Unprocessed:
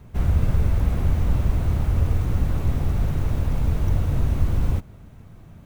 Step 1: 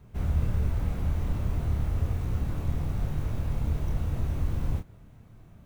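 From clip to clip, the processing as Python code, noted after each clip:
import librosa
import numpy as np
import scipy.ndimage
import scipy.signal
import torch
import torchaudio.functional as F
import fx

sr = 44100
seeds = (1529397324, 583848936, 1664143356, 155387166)

y = fx.doubler(x, sr, ms=27.0, db=-5.0)
y = y * librosa.db_to_amplitude(-8.0)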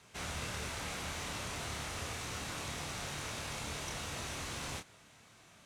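y = fx.weighting(x, sr, curve='ITU-R 468')
y = y * librosa.db_to_amplitude(2.5)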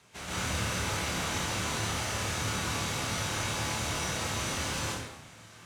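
y = scipy.signal.sosfilt(scipy.signal.butter(2, 52.0, 'highpass', fs=sr, output='sos'), x)
y = np.clip(10.0 ** (34.0 / 20.0) * y, -1.0, 1.0) / 10.0 ** (34.0 / 20.0)
y = fx.rev_plate(y, sr, seeds[0], rt60_s=1.0, hf_ratio=0.75, predelay_ms=115, drr_db=-8.0)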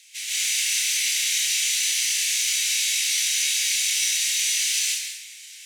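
y = scipy.signal.sosfilt(scipy.signal.butter(8, 2000.0, 'highpass', fs=sr, output='sos'), x)
y = fx.high_shelf(y, sr, hz=3200.0, db=9.0)
y = y + 10.0 ** (-10.5 / 20.0) * np.pad(y, (int(184 * sr / 1000.0), 0))[:len(y)]
y = y * librosa.db_to_amplitude(7.0)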